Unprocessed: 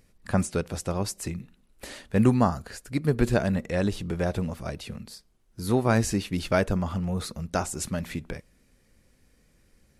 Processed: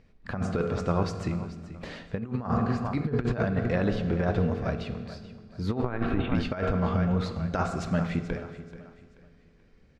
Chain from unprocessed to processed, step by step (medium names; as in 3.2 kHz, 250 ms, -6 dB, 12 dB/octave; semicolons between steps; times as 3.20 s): dynamic bell 1.3 kHz, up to +5 dB, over -41 dBFS, Q 1.8; 5.82–6.35 s: LPC vocoder at 8 kHz pitch kept; distance through air 200 m; feedback delay 433 ms, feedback 34%, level -15 dB; on a send at -8 dB: reverberation RT60 1.5 s, pre-delay 3 ms; on the sum: compressor with a negative ratio -25 dBFS, ratio -0.5